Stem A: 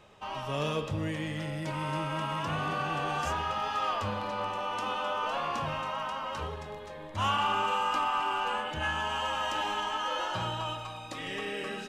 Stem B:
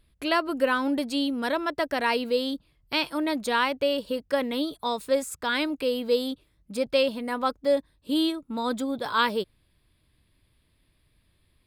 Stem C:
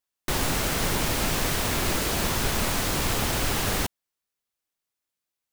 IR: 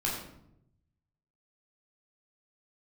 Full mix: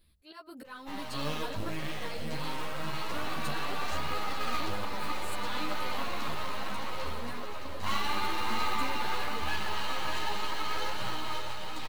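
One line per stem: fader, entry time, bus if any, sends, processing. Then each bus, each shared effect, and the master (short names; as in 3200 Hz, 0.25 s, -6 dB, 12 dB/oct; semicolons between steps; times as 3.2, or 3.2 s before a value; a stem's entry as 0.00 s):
+2.5 dB, 0.65 s, no send, echo send -7 dB, half-wave rectifier; short-mantissa float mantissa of 2-bit
-0.5 dB, 0.00 s, no send, no echo send, high shelf 10000 Hz +11 dB; auto swell 0.697 s; compressor, threshold -37 dBFS, peak gain reduction 16.5 dB
off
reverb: off
echo: feedback echo 0.618 s, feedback 60%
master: bell 4200 Hz +6.5 dB 0.32 oct; ensemble effect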